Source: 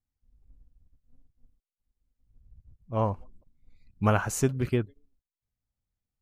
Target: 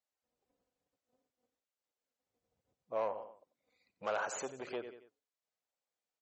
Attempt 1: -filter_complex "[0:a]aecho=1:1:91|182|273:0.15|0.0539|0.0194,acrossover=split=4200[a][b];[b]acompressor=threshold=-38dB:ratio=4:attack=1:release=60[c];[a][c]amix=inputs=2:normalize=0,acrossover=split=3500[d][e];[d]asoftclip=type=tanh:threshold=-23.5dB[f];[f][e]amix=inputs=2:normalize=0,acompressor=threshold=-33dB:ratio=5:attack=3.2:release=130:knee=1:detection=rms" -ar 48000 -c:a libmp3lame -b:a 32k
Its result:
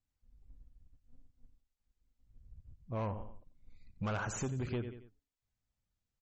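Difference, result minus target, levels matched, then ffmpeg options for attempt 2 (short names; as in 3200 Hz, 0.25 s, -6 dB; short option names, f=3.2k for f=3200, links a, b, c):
500 Hz band -4.5 dB
-filter_complex "[0:a]aecho=1:1:91|182|273:0.15|0.0539|0.0194,acrossover=split=4200[a][b];[b]acompressor=threshold=-38dB:ratio=4:attack=1:release=60[c];[a][c]amix=inputs=2:normalize=0,acrossover=split=3500[d][e];[d]asoftclip=type=tanh:threshold=-23.5dB[f];[f][e]amix=inputs=2:normalize=0,acompressor=threshold=-33dB:ratio=5:attack=3.2:release=130:knee=1:detection=rms,highpass=f=550:t=q:w=2" -ar 48000 -c:a libmp3lame -b:a 32k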